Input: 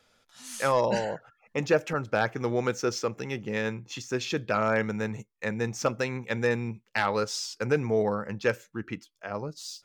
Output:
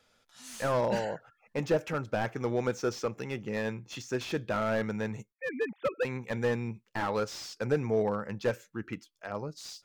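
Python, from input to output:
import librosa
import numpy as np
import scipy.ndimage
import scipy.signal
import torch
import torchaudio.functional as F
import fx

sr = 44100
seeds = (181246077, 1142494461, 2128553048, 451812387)

y = fx.sine_speech(x, sr, at=(5.32, 6.05))
y = fx.slew_limit(y, sr, full_power_hz=63.0)
y = y * librosa.db_to_amplitude(-2.5)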